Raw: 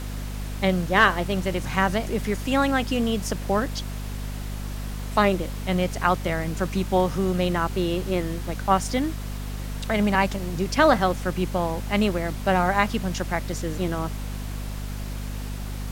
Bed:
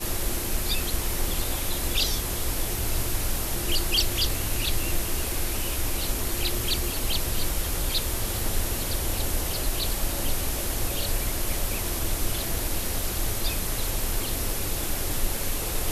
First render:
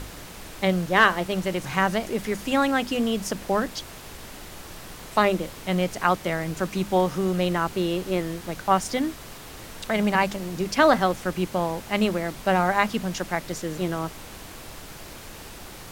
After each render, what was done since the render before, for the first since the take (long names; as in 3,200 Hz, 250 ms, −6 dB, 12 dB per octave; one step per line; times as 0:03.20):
mains-hum notches 50/100/150/200/250 Hz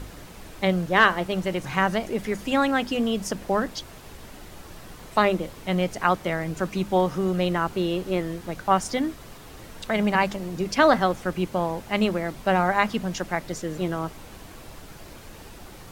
broadband denoise 6 dB, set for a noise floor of −42 dBFS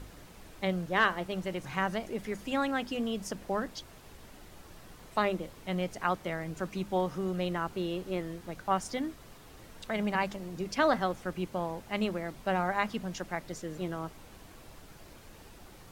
level −8.5 dB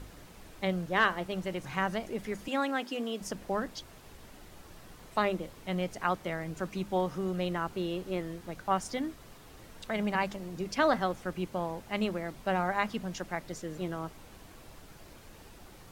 0:02.48–0:03.21: high-pass filter 240 Hz 24 dB per octave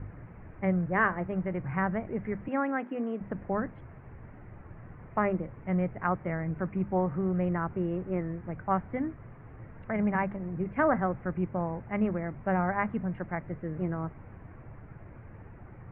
Butterworth low-pass 2,200 Hz 48 dB per octave
parametric band 110 Hz +13 dB 1.3 octaves